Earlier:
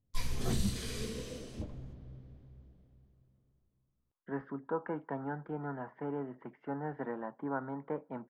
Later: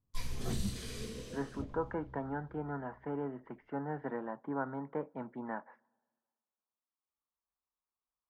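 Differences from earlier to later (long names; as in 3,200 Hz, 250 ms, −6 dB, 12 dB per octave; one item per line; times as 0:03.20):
speech: entry −2.95 s
background −3.5 dB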